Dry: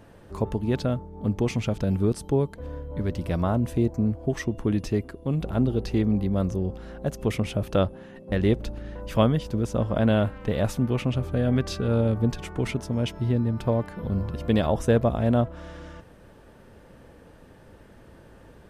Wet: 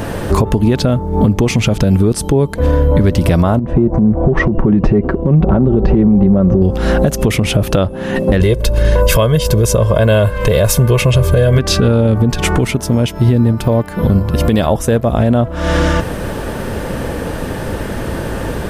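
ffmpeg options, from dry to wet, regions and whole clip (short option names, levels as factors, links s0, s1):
-filter_complex "[0:a]asettb=1/sr,asplit=3[s0][s1][s2];[s0]atrim=end=3.594[s3];[s1]atrim=start=3.59:end=6.62,asetpts=PTS-STARTPTS,afade=t=in:d=0.004:c=qsin,afade=t=out:st=3.026:d=0.004:c=qsin,lowpass=1100,aecho=1:1:5.3:0.43,atrim=end_sample=133623,acompressor=threshold=0.0316:ratio=6:attack=3.2:release=140:knee=1:detection=peak[s4];[s2]atrim=start=6.616[s5];[s3][s4]acrossfade=d=0.004:c1=hsin:c2=qsin[s6];[s6][s5]acrossfade=d=0.004:c1=qsin:c2=hsin,asettb=1/sr,asplit=3[s7][s8][s9];[s7]atrim=end=8.404[s10];[s8]atrim=start=8.4:end=11.59,asetpts=PTS-STARTPTS,afade=t=in:d=0.004:c=qsin,afade=t=out:st=3.186:d=0.004:c=qsin,highshelf=f=6900:g=9,aecho=1:1:1.9:0.84,atrim=end_sample=140679[s11];[s9]atrim=start=11.586[s12];[s10][s11]acrossfade=d=0.004:c1=hsin:c2=qsin[s13];[s13][s12]acrossfade=d=0.004:c1=qsin:c2=hsin,asettb=1/sr,asplit=3[s14][s15][s16];[s14]atrim=end=12.584[s17];[s15]atrim=start=12.58:end=15.12,asetpts=PTS-STARTPTS,afade=t=in:d=0.004:c=qsin,afade=t=out:st=2.536:d=0.004:c=qsin,agate=range=0.447:threshold=0.0501:ratio=16:release=100:detection=peak,highshelf=f=9700:g=8.5[s18];[s16]atrim=start=15.116[s19];[s17][s18]acrossfade=d=0.004:c1=hsin:c2=qsin[s20];[s20][s19]acrossfade=d=0.004:c1=qsin:c2=hsin,highshelf=f=8000:g=5,acompressor=threshold=0.0178:ratio=12,alimiter=level_in=33.5:limit=0.891:release=50:level=0:latency=1,volume=0.891"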